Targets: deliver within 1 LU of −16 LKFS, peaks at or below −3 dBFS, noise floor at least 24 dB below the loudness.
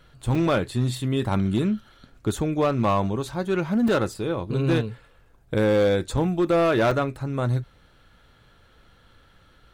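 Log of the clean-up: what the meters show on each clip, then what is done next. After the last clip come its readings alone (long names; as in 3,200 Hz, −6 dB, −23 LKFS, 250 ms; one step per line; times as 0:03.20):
share of clipped samples 1.5%; peaks flattened at −15.0 dBFS; number of dropouts 4; longest dropout 3.6 ms; integrated loudness −24.0 LKFS; sample peak −15.0 dBFS; target loudness −16.0 LKFS
→ clipped peaks rebuilt −15 dBFS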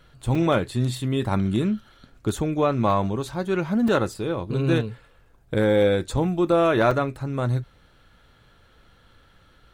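share of clipped samples 0.0%; number of dropouts 4; longest dropout 3.6 ms
→ repair the gap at 0:00.35/0:03.88/0:06.17/0:06.91, 3.6 ms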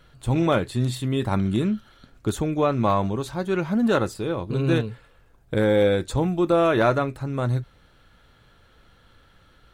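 number of dropouts 0; integrated loudness −23.5 LKFS; sample peak −6.0 dBFS; target loudness −16.0 LKFS
→ level +7.5 dB
brickwall limiter −3 dBFS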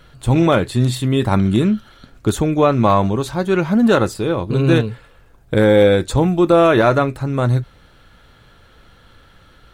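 integrated loudness −16.0 LKFS; sample peak −3.0 dBFS; background noise floor −49 dBFS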